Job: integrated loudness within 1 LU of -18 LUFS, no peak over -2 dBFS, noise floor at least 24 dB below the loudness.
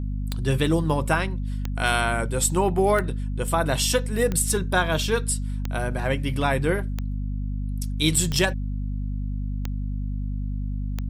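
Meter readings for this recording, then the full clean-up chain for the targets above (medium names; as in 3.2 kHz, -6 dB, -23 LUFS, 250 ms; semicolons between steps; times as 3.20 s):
clicks found 9; hum 50 Hz; highest harmonic 250 Hz; hum level -25 dBFS; loudness -25.0 LUFS; peak level -7.0 dBFS; loudness target -18.0 LUFS
-> de-click; de-hum 50 Hz, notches 5; trim +7 dB; peak limiter -2 dBFS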